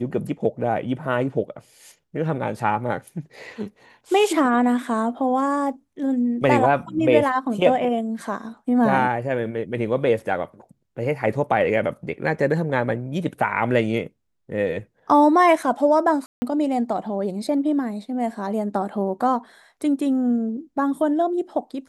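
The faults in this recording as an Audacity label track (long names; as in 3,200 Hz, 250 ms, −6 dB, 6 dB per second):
16.260000	16.420000	drop-out 160 ms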